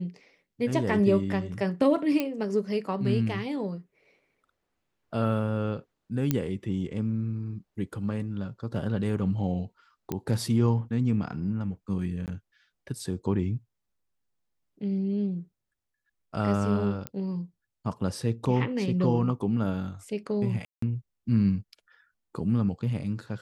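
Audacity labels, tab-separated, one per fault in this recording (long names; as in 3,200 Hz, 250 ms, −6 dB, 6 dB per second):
2.200000	2.200000	click −14 dBFS
6.310000	6.310000	click −11 dBFS
10.120000	10.120000	click −16 dBFS
12.260000	12.280000	drop-out 18 ms
17.070000	17.070000	click −17 dBFS
20.650000	20.820000	drop-out 174 ms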